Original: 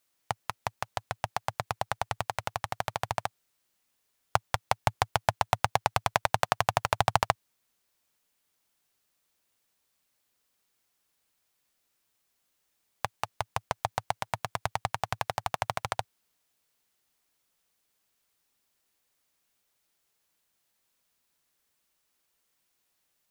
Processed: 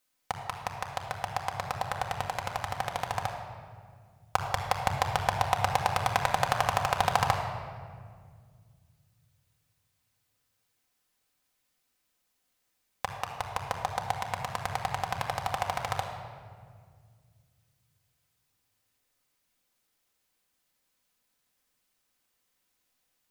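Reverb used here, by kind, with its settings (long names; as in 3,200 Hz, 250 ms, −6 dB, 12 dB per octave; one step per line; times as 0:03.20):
rectangular room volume 3,200 cubic metres, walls mixed, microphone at 2 metres
level −2.5 dB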